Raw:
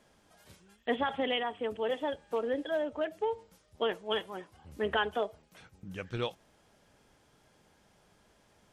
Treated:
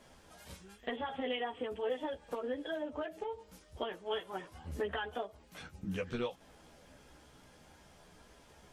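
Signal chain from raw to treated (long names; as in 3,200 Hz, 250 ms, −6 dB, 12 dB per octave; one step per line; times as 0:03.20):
downward compressor 8 to 1, threshold −40 dBFS, peak gain reduction 15.5 dB
multi-voice chorus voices 6, 0.65 Hz, delay 14 ms, depth 2.3 ms
backwards echo 43 ms −21 dB
level +8.5 dB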